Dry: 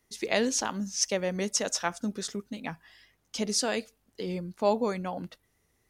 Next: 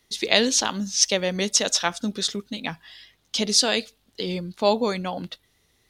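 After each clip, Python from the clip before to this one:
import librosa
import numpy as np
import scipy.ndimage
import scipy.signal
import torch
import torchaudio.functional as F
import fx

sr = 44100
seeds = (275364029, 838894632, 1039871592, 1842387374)

y = fx.peak_eq(x, sr, hz=3700.0, db=12.0, octaves=0.88)
y = F.gain(torch.from_numpy(y), 4.5).numpy()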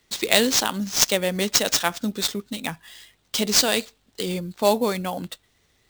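y = fx.sample_hold(x, sr, seeds[0], rate_hz=12000.0, jitter_pct=20)
y = F.gain(torch.from_numpy(y), 1.0).numpy()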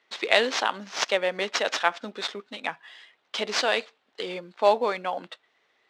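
y = fx.bandpass_edges(x, sr, low_hz=540.0, high_hz=2600.0)
y = F.gain(torch.from_numpy(y), 2.0).numpy()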